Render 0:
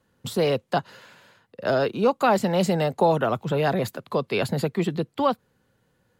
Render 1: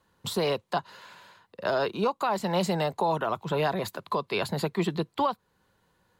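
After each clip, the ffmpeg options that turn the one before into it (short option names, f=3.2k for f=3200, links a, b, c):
-af "equalizer=f=125:t=o:w=0.33:g=-10,equalizer=f=250:t=o:w=0.33:g=-8,equalizer=f=500:t=o:w=0.33:g=-4,equalizer=f=1k:t=o:w=0.33:g=8,equalizer=f=4k:t=o:w=0.33:g=4,alimiter=limit=-16.5dB:level=0:latency=1:release=366"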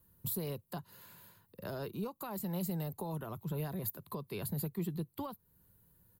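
-af "firequalizer=gain_entry='entry(130,0);entry(200,-6);entry(660,-18);entry(3900,-17);entry(6300,-12);entry(13000,13)':delay=0.05:min_phase=1,acompressor=threshold=-52dB:ratio=1.5,equalizer=f=4.5k:w=6.1:g=2,volume=5dB"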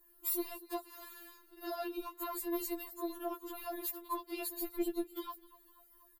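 -filter_complex "[0:a]asplit=5[a][b][c][d][e];[b]adelay=252,afreqshift=-31,volume=-21.5dB[f];[c]adelay=504,afreqshift=-62,volume=-26.5dB[g];[d]adelay=756,afreqshift=-93,volume=-31.6dB[h];[e]adelay=1008,afreqshift=-124,volume=-36.6dB[i];[a][f][g][h][i]amix=inputs=5:normalize=0,asoftclip=type=tanh:threshold=-30.5dB,afftfilt=real='re*4*eq(mod(b,16),0)':imag='im*4*eq(mod(b,16),0)':win_size=2048:overlap=0.75,volume=6.5dB"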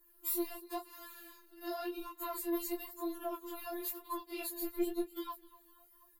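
-af "flanger=delay=18:depth=5.9:speed=0.96,volume=3dB"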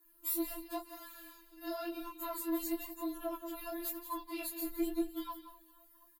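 -filter_complex "[0:a]afreqshift=-15,asplit=2[a][b];[b]aecho=0:1:178:0.266[c];[a][c]amix=inputs=2:normalize=0"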